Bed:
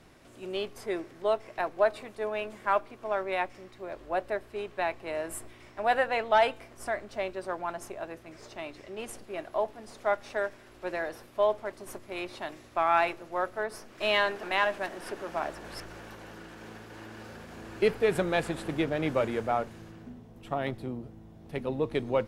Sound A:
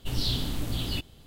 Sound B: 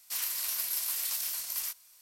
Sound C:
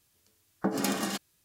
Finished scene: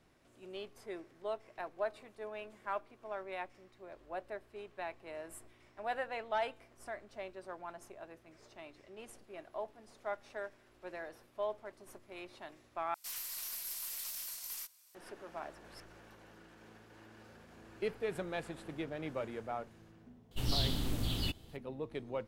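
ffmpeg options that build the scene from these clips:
-filter_complex "[0:a]volume=-12dB[a];[2:a]aeval=exprs='(tanh(31.6*val(0)+0.1)-tanh(0.1))/31.6':c=same[b];[a]asplit=2[c][d];[c]atrim=end=12.944[e];[b]atrim=end=2.01,asetpts=PTS-STARTPTS,volume=-6.5dB[f];[d]atrim=start=14.946[g];[1:a]atrim=end=1.26,asetpts=PTS-STARTPTS,volume=-4.5dB,afade=t=in:d=0.004:c=hsin,afade=t=out:st=1.256:d=0.004:c=hsin,adelay=20310[h];[e][f]acrossfade=d=0.004:c1=hsin:c2=hsin[i];[i][g]acrossfade=d=0.004:c1=hsin:c2=hsin[j];[j][h]amix=inputs=2:normalize=0"

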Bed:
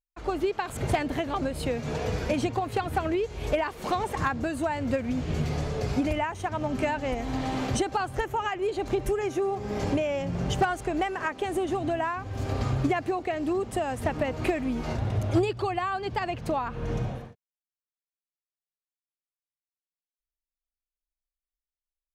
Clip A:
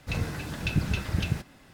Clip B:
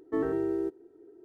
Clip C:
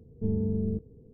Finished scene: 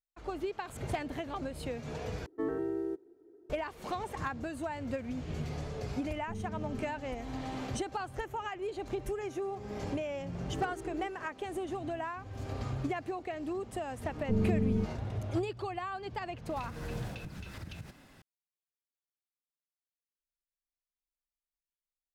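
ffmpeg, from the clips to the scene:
-filter_complex "[2:a]asplit=2[a][b];[3:a]asplit=2[c][d];[0:a]volume=-9dB[e];[b]flanger=delay=16:depth=6.3:speed=2.5[f];[1:a]acompressor=threshold=-37dB:ratio=6:attack=3.2:release=140:knee=1:detection=peak[g];[e]asplit=2[h][i];[h]atrim=end=2.264[j];[a]atrim=end=1.24,asetpts=PTS-STARTPTS,volume=-5dB[k];[i]atrim=start=3.496[l];[c]atrim=end=1.13,asetpts=PTS-STARTPTS,volume=-13dB,afade=t=in:d=0.004:c=hsin,afade=t=out:st=1.126:d=0.004:c=hsin,adelay=6060[m];[f]atrim=end=1.24,asetpts=PTS-STARTPTS,volume=-10.5dB,afade=t=in:d=0.004:c=hsin,afade=t=out:st=1.236:d=0.004:c=hsin,adelay=10390[n];[d]atrim=end=1.13,asetpts=PTS-STARTPTS,volume=-0.5dB,afade=t=in:d=0.004:c=hsin,afade=t=out:st=1.126:d=0.004:c=hsin,adelay=14070[o];[g]atrim=end=1.73,asetpts=PTS-STARTPTS,volume=-3.5dB,afade=t=in:d=0.004:c=hsin,afade=t=out:st=1.726:d=0.004:c=hsin,adelay=16490[p];[j][k]acrossfade=d=0.004:c1=hsin:c2=hsin[q];[q][l]acrossfade=d=0.004:c1=hsin:c2=hsin[r];[r][m][n][o][p]amix=inputs=5:normalize=0"

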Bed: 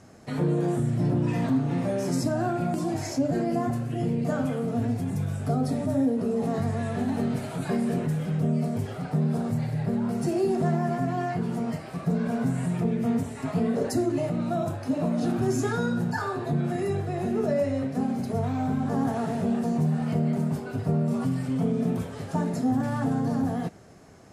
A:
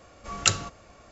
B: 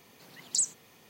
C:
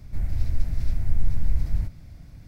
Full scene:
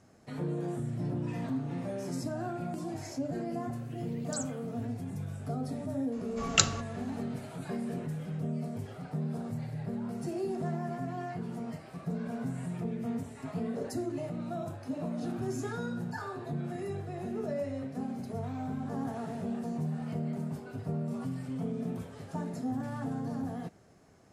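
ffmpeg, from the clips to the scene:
-filter_complex "[0:a]volume=-9.5dB[a];[2:a]atrim=end=1.09,asetpts=PTS-STARTPTS,volume=-11.5dB,afade=t=in:d=0.004:c=hsin,afade=t=out:st=1.086:d=0.004:c=hsin,adelay=3780[b];[1:a]atrim=end=1.11,asetpts=PTS-STARTPTS,volume=-2dB,afade=t=in:d=0.004:c=hsin,afade=t=out:st=1.106:d=0.004:c=hsin,adelay=6120[c];[a][b][c]amix=inputs=3:normalize=0"

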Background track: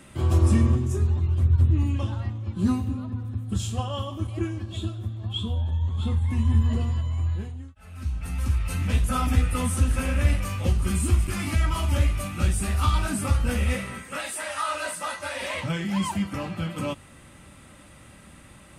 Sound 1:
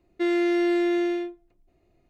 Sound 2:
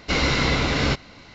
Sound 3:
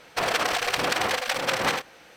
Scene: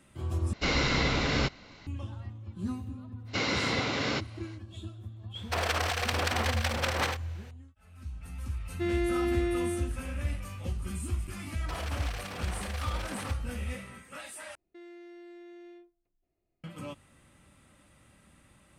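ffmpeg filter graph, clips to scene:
-filter_complex "[2:a]asplit=2[a][b];[3:a]asplit=2[c][d];[1:a]asplit=2[e][f];[0:a]volume=-11.5dB[g];[b]highpass=170[h];[d]alimiter=limit=-21.5dB:level=0:latency=1:release=67[i];[f]alimiter=level_in=3dB:limit=-24dB:level=0:latency=1:release=448,volume=-3dB[j];[g]asplit=3[k][l][m];[k]atrim=end=0.534[n];[a]atrim=end=1.34,asetpts=PTS-STARTPTS,volume=-6dB[o];[l]atrim=start=1.866:end=14.554[p];[j]atrim=end=2.09,asetpts=PTS-STARTPTS,volume=-17dB[q];[m]atrim=start=16.636[r];[h]atrim=end=1.34,asetpts=PTS-STARTPTS,volume=-7.5dB,afade=t=in:d=0.05,afade=t=out:st=1.29:d=0.05,adelay=143325S[s];[c]atrim=end=2.16,asetpts=PTS-STARTPTS,volume=-5.5dB,afade=t=in:d=0.004:c=hsin,afade=t=out:st=2.156:d=0.004:c=hsin,adelay=5350[t];[e]atrim=end=2.09,asetpts=PTS-STARTPTS,volume=-7dB,afade=t=in:d=0.004:c=hsin,afade=t=out:st=2.086:d=0.004:c=hsin,adelay=8600[u];[i]atrim=end=2.16,asetpts=PTS-STARTPTS,volume=-9.5dB,afade=t=in:d=0.004:c=hsin,afade=t=out:st=2.156:d=0.004:c=hsin,adelay=11520[v];[n][o]acrossfade=d=0.004:c1=hsin:c2=hsin[w];[w][p]acrossfade=d=0.004:c1=hsin:c2=hsin[x];[x][q]acrossfade=d=0.004:c1=hsin:c2=hsin[y];[y][r]acrossfade=d=0.004:c1=hsin:c2=hsin[z];[z][s][t][u][v]amix=inputs=5:normalize=0"

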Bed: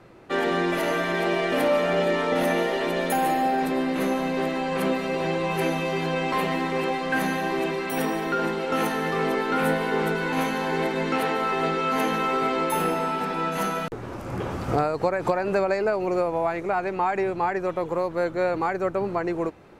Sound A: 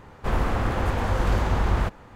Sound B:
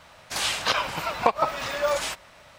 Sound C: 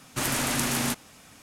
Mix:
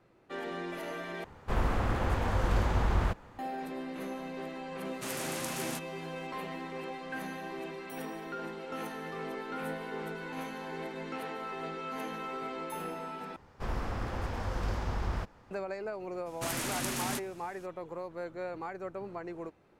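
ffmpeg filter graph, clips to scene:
-filter_complex "[1:a]asplit=2[a][b];[3:a]asplit=2[c][d];[0:a]volume=-14.5dB[e];[c]highpass=f=170:p=1[f];[b]equalizer=f=5.2k:t=o:w=0.35:g=7[g];[e]asplit=3[h][i][j];[h]atrim=end=1.244[k];[a]atrim=end=2.15,asetpts=PTS-STARTPTS,volume=-5.5dB[l];[i]atrim=start=3.386:end=13.364[m];[g]atrim=end=2.15,asetpts=PTS-STARTPTS,volume=-11dB[n];[j]atrim=start=15.506[o];[f]atrim=end=1.42,asetpts=PTS-STARTPTS,volume=-11dB,afade=t=in:d=0.004:c=hsin,afade=t=out:st=1.416:d=0.004:c=hsin,adelay=213885S[p];[d]atrim=end=1.42,asetpts=PTS-STARTPTS,volume=-8dB,afade=t=in:d=0.02,afade=t=out:st=1.4:d=0.02,adelay=16250[q];[k][l]acrossfade=d=0.004:c1=hsin:c2=hsin[r];[r][m]acrossfade=d=0.004:c1=hsin:c2=hsin[s];[s][n]acrossfade=d=0.004:c1=hsin:c2=hsin[t];[t][o]acrossfade=d=0.004:c1=hsin:c2=hsin[u];[u][p][q]amix=inputs=3:normalize=0"

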